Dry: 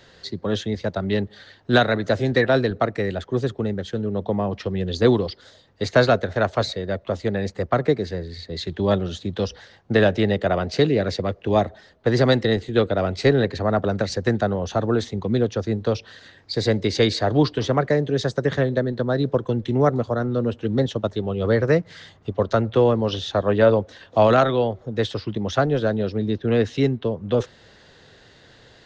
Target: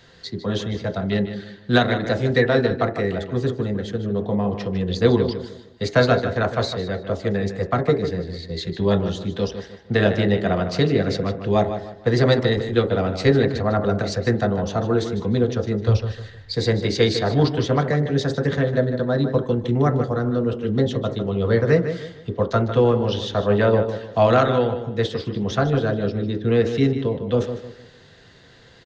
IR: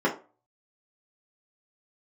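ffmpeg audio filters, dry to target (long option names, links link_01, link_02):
-filter_complex "[0:a]asplit=3[link_01][link_02][link_03];[link_01]afade=type=out:start_time=15.87:duration=0.02[link_04];[link_02]asubboost=boost=10.5:cutoff=91,afade=type=in:start_time=15.87:duration=0.02,afade=type=out:start_time=16.52:duration=0.02[link_05];[link_03]afade=type=in:start_time=16.52:duration=0.02[link_06];[link_04][link_05][link_06]amix=inputs=3:normalize=0,asplit=2[link_07][link_08];[link_08]adelay=152,lowpass=frequency=4400:poles=1,volume=-9.5dB,asplit=2[link_09][link_10];[link_10]adelay=152,lowpass=frequency=4400:poles=1,volume=0.34,asplit=2[link_11][link_12];[link_12]adelay=152,lowpass=frequency=4400:poles=1,volume=0.34,asplit=2[link_13][link_14];[link_14]adelay=152,lowpass=frequency=4400:poles=1,volume=0.34[link_15];[link_07][link_09][link_11][link_13][link_15]amix=inputs=5:normalize=0,asplit=2[link_16][link_17];[1:a]atrim=start_sample=2205[link_18];[link_17][link_18]afir=irnorm=-1:irlink=0,volume=-20dB[link_19];[link_16][link_19]amix=inputs=2:normalize=0"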